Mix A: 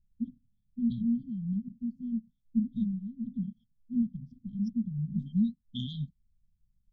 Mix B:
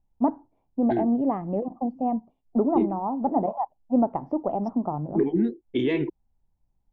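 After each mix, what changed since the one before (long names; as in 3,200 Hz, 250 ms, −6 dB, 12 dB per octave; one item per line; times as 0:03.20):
master: remove linear-phase brick-wall band-stop 240–3,100 Hz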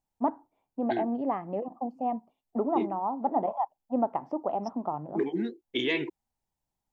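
master: add spectral tilt +4 dB per octave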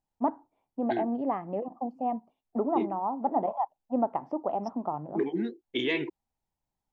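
master: add high-shelf EQ 5,800 Hz −6.5 dB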